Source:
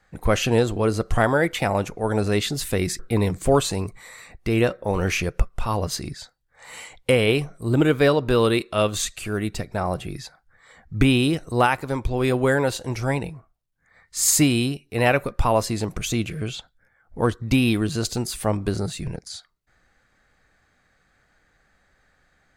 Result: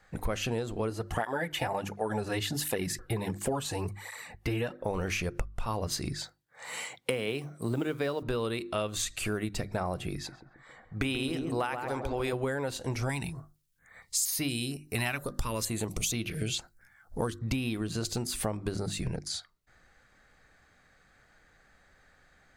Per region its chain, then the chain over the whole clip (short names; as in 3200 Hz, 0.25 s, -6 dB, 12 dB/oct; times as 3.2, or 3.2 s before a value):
0.9–4.81 bell 12000 Hz +5.5 dB 0.29 oct + small resonant body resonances 860/1700/2900 Hz, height 8 dB, ringing for 20 ms + tape flanging out of phase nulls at 1.4 Hz, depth 5.2 ms
6.18–8.23 HPF 120 Hz 24 dB/oct + modulation noise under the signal 33 dB
10.15–12.33 low shelf 250 Hz -10.5 dB + darkening echo 0.135 s, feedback 56%, low-pass 970 Hz, level -5.5 dB + mismatched tape noise reduction decoder only
13.09–17.39 high shelf 3400 Hz +11 dB + stepped notch 4.3 Hz 500–7500 Hz
whole clip: notches 50/100/150/200/250/300/350 Hz; compressor 10:1, threshold -29 dBFS; gain +1 dB